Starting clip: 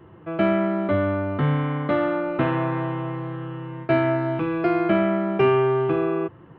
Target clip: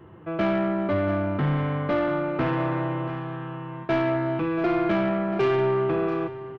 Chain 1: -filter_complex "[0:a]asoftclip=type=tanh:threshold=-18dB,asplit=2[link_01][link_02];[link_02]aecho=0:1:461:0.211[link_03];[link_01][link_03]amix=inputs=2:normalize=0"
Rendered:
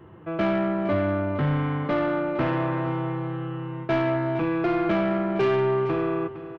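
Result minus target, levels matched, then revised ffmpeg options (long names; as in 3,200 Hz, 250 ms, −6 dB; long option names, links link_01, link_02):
echo 224 ms early
-filter_complex "[0:a]asoftclip=type=tanh:threshold=-18dB,asplit=2[link_01][link_02];[link_02]aecho=0:1:685:0.211[link_03];[link_01][link_03]amix=inputs=2:normalize=0"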